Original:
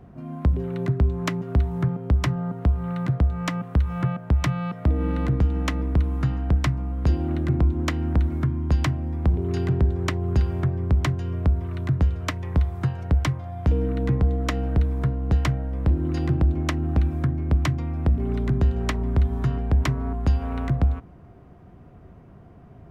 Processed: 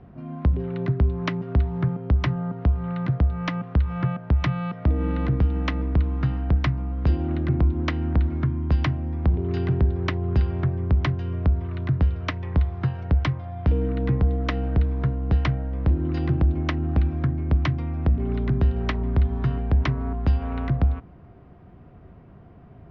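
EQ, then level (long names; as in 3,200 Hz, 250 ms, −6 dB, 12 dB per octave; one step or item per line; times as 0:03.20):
Butterworth low-pass 6,400 Hz
high-frequency loss of the air 290 metres
high-shelf EQ 3,100 Hz +11 dB
0.0 dB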